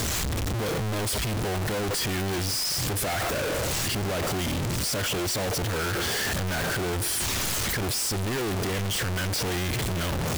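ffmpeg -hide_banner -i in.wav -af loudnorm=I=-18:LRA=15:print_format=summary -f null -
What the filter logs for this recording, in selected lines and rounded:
Input Integrated:    -26.8 LUFS
Input True Peak:     -21.6 dBTP
Input LRA:             0.7 LU
Input Threshold:     -36.8 LUFS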